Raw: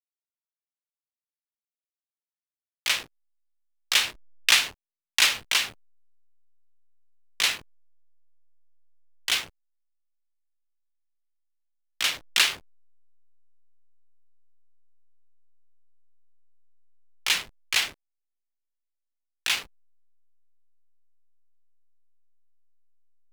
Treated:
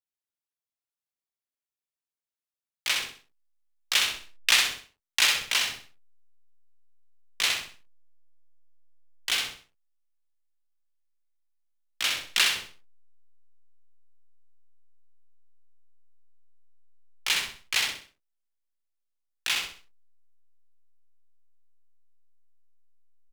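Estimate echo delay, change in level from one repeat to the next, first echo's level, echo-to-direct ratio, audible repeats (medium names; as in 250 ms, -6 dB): 64 ms, -9.5 dB, -4.5 dB, -4.0 dB, 4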